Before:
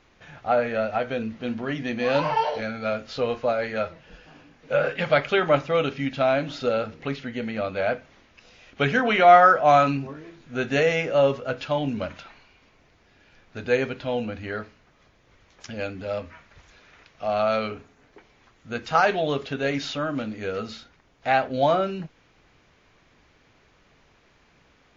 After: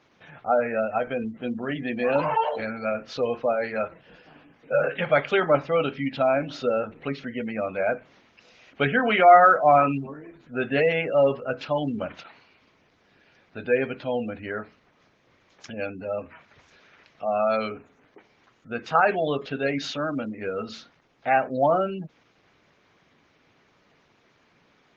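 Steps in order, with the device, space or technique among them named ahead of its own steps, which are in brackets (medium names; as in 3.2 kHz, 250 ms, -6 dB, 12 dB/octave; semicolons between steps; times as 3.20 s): noise-suppressed video call (high-pass 130 Hz 12 dB/octave; spectral gate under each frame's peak -25 dB strong; Opus 16 kbps 48 kHz)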